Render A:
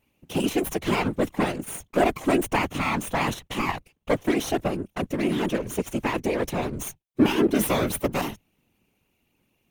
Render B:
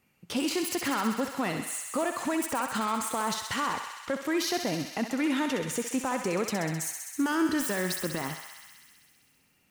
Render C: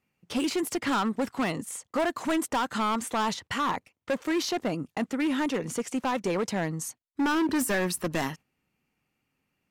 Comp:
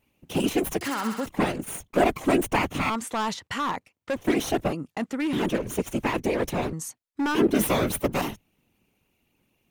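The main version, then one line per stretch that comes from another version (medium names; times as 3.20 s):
A
0.81–1.26 s: from B
2.90–4.16 s: from C
4.73–5.33 s: from C
6.73–7.35 s: from C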